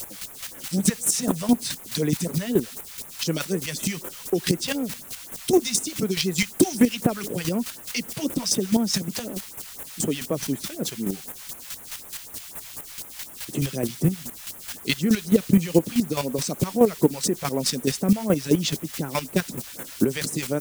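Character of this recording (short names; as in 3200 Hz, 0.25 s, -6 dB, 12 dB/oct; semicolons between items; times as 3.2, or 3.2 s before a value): a quantiser's noise floor 6-bit, dither triangular; chopped level 4.7 Hz, depth 60%, duty 20%; phasing stages 2, 4 Hz, lowest notch 260–4700 Hz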